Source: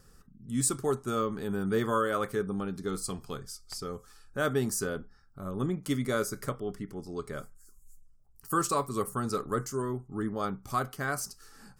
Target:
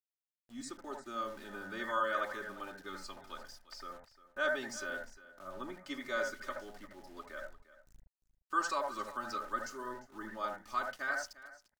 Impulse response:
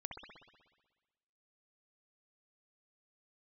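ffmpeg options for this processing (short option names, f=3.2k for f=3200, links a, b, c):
-filter_complex "[0:a]agate=range=-33dB:threshold=-47dB:ratio=3:detection=peak,lowpass=f=6k:w=0.5412,lowpass=f=6k:w=1.3066,equalizer=f=100:w=0.51:g=-14.5,aecho=1:1:3.3:0.88,acrossover=split=360|640|3100[a][b][c][d];[c]dynaudnorm=f=560:g=5:m=7dB[e];[a][b][e][d]amix=inputs=4:normalize=0,aeval=exprs='val(0)*gte(abs(val(0)),0.00531)':c=same,aecho=1:1:350:0.141[f];[1:a]atrim=start_sample=2205,atrim=end_sample=3087,asetrate=37044,aresample=44100[g];[f][g]afir=irnorm=-1:irlink=0,adynamicequalizer=threshold=0.01:dfrequency=2500:dqfactor=0.7:tfrequency=2500:tqfactor=0.7:attack=5:release=100:ratio=0.375:range=3:mode=boostabove:tftype=highshelf,volume=-8dB"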